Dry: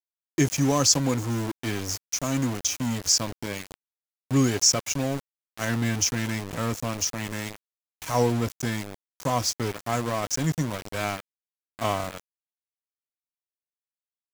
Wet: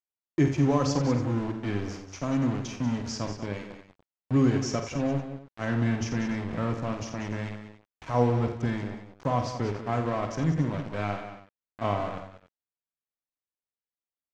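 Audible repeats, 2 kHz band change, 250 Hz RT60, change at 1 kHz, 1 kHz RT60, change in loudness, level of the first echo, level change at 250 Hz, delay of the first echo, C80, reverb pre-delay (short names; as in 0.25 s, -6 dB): 4, -4.5 dB, none, -1.5 dB, none, -3.0 dB, -8.5 dB, +0.5 dB, 49 ms, none, none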